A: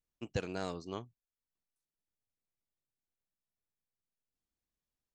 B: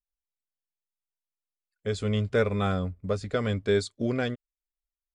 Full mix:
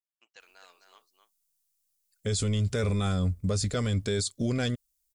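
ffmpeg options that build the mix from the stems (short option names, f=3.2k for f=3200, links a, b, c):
-filter_complex "[0:a]highpass=1.4k,highshelf=f=3k:g=-10.5,volume=-6.5dB,asplit=2[a][b];[b]volume=-7dB[c];[1:a]bass=f=250:g=8,treble=f=4k:g=14,adelay=400,volume=1dB[d];[c]aecho=0:1:259:1[e];[a][d][e]amix=inputs=3:normalize=0,highshelf=f=3.6k:g=6,alimiter=limit=-20.5dB:level=0:latency=1:release=10"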